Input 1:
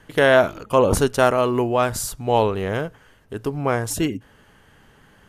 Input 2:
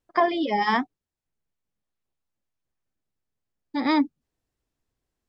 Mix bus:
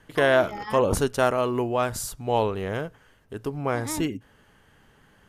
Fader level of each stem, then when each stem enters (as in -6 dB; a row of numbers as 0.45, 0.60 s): -5.0, -12.5 dB; 0.00, 0.00 s